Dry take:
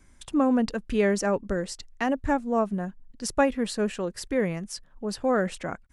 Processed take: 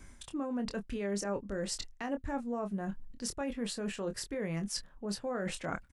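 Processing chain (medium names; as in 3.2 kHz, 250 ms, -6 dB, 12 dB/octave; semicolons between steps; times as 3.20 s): peak limiter -20 dBFS, peak gain reduction 9 dB; reverse; compression 6:1, threshold -39 dBFS, peak gain reduction 15 dB; reverse; doubling 25 ms -8 dB; trim +4.5 dB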